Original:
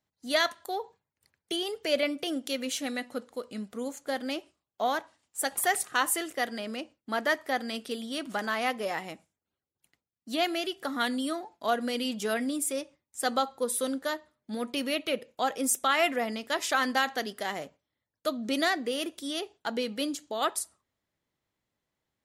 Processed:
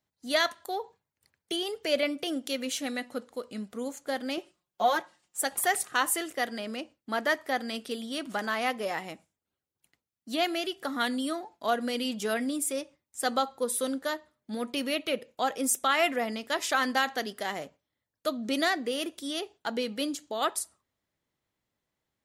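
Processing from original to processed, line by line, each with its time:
0:04.37–0:05.41: comb filter 5.6 ms, depth 89%

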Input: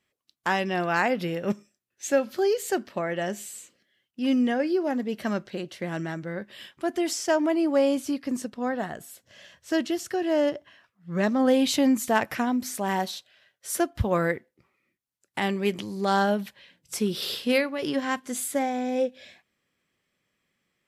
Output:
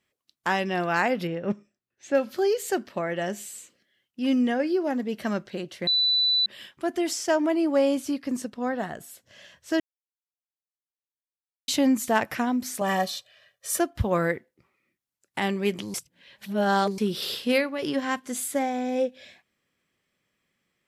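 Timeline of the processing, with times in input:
0:01.27–0:02.15: head-to-tape spacing loss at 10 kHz 20 dB
0:05.87–0:06.46: beep over 3,980 Hz −19 dBFS
0:09.80–0:11.68: silence
0:12.81–0:13.79: comb filter 1.7 ms, depth 98%
0:15.94–0:16.98: reverse

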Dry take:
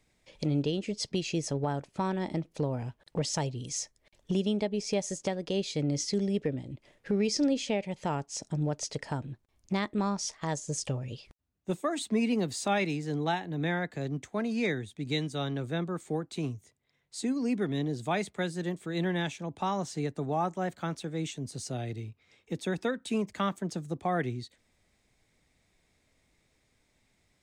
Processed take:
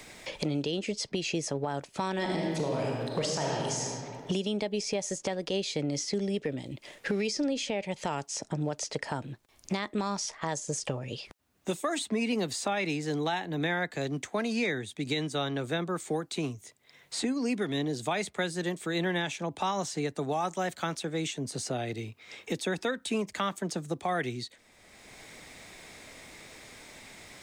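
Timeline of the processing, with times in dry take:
0:02.14–0:03.82: thrown reverb, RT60 1.5 s, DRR −2 dB
whole clip: low-shelf EQ 280 Hz −10 dB; brickwall limiter −25 dBFS; multiband upward and downward compressor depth 70%; level +4.5 dB

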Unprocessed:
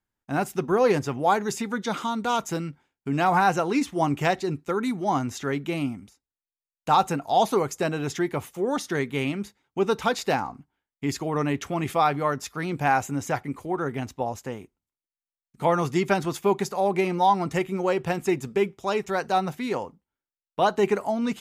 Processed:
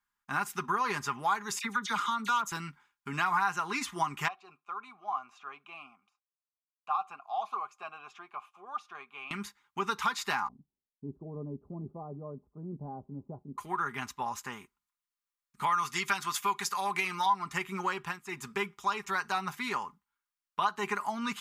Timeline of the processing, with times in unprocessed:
0:01.59–0:02.52: all-pass dispersion lows, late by 41 ms, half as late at 2,400 Hz
0:04.28–0:09.31: formant filter a
0:10.48–0:13.58: elliptic low-pass filter 570 Hz, stop band 70 dB
0:15.66–0:17.26: tilt shelving filter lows −5 dB, about 1,200 Hz
0:17.96–0:18.48: duck −16.5 dB, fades 0.24 s
whole clip: low shelf with overshoot 790 Hz −10.5 dB, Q 3; comb filter 4.9 ms, depth 44%; downward compressor 2.5 to 1, threshold −29 dBFS

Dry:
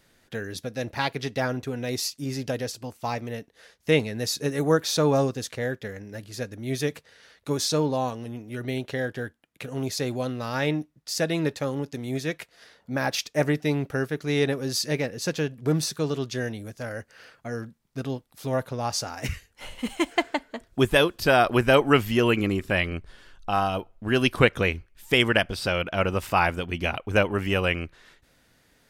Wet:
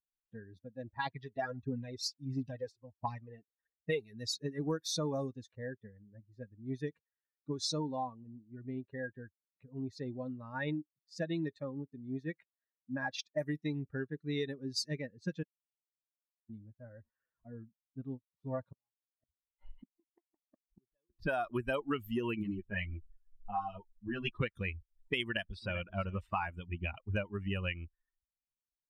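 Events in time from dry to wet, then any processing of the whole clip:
0:01.06–0:04.13: phase shifter 1.5 Hz
0:08.06–0:09.04: high-shelf EQ 4,000 Hz → 7,800 Hz −10.5 dB
0:15.43–0:16.49: silence
0:16.99–0:17.63: linear delta modulator 32 kbit/s, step −44.5 dBFS
0:18.72–0:21.10: gate with flip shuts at −24 dBFS, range −32 dB
0:22.43–0:24.41: string-ensemble chorus
0:25.23–0:25.81: delay throw 390 ms, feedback 25%, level −12.5 dB
whole clip: spectral dynamics exaggerated over time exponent 2; low-pass that shuts in the quiet parts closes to 870 Hz, open at −24 dBFS; downward compressor 6 to 1, threshold −33 dBFS; level +1 dB

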